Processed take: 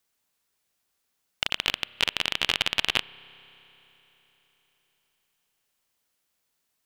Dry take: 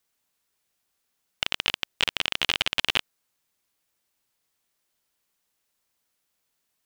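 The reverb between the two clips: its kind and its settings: spring tank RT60 4 s, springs 30 ms, chirp 20 ms, DRR 20 dB

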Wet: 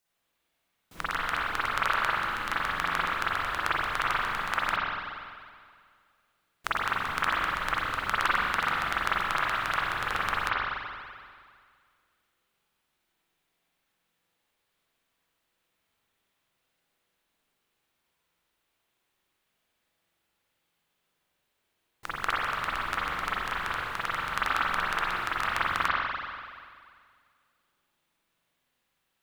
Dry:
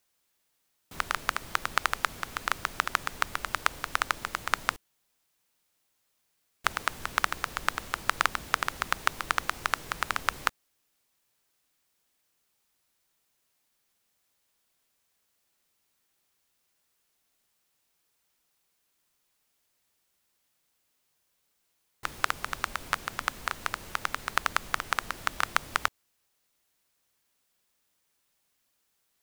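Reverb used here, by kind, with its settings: spring tank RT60 2 s, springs 41/47 ms, chirp 20 ms, DRR -9.5 dB; gain -7 dB

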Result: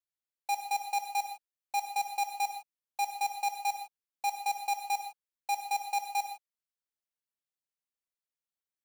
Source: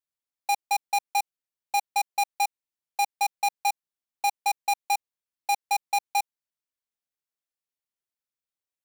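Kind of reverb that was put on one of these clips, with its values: non-linear reverb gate 0.18 s flat, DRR 5 dB; gain -7.5 dB

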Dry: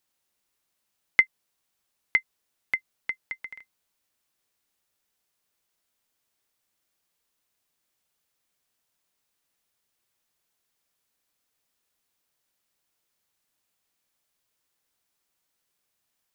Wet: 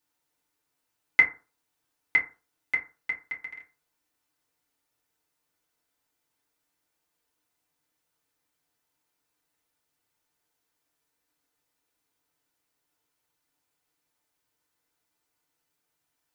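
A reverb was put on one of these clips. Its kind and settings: FDN reverb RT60 0.35 s, low-frequency decay 0.95×, high-frequency decay 0.4×, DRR -4.5 dB; gain -5 dB

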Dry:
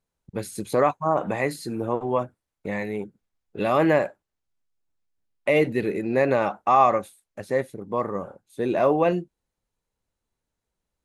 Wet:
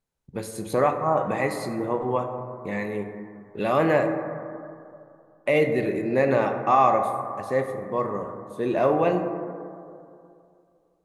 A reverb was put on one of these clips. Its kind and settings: plate-style reverb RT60 2.5 s, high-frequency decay 0.25×, DRR 5 dB; gain -1.5 dB

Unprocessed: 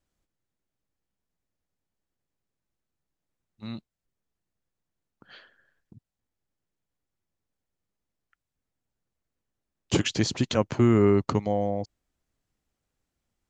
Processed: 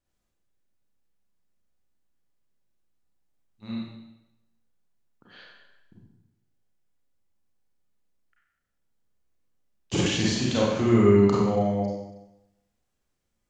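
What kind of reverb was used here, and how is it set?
Schroeder reverb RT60 0.93 s, combs from 31 ms, DRR -6 dB; gain -5 dB

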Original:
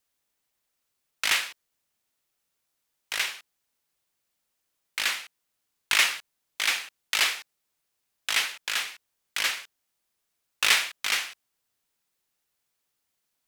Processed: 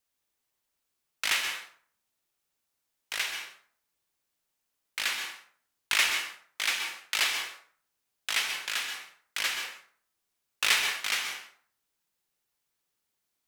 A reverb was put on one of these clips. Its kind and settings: plate-style reverb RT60 0.51 s, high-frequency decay 0.65×, pre-delay 0.115 s, DRR 5 dB; gain -3.5 dB

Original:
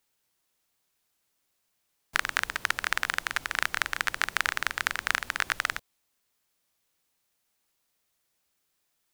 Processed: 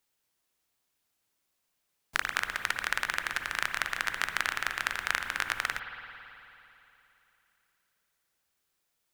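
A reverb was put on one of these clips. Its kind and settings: spring tank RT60 3.1 s, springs 54 ms, chirp 60 ms, DRR 6.5 dB; gain -3 dB

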